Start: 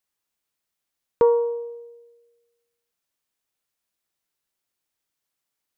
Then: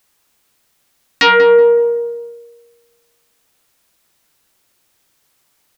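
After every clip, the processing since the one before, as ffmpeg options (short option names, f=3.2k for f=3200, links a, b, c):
-filter_complex "[0:a]aeval=exprs='0.376*sin(PI/2*5.01*val(0)/0.376)':c=same,asplit=2[a][b];[b]adelay=187,lowpass=f=1.2k:p=1,volume=-5.5dB,asplit=2[c][d];[d]adelay=187,lowpass=f=1.2k:p=1,volume=0.43,asplit=2[e][f];[f]adelay=187,lowpass=f=1.2k:p=1,volume=0.43,asplit=2[g][h];[h]adelay=187,lowpass=f=1.2k:p=1,volume=0.43,asplit=2[i][j];[j]adelay=187,lowpass=f=1.2k:p=1,volume=0.43[k];[c][e][g][i][k]amix=inputs=5:normalize=0[l];[a][l]amix=inputs=2:normalize=0,volume=2.5dB"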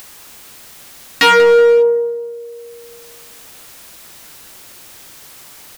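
-af "acompressor=mode=upward:threshold=-24dB:ratio=2.5,asoftclip=type=hard:threshold=-9.5dB,volume=2.5dB"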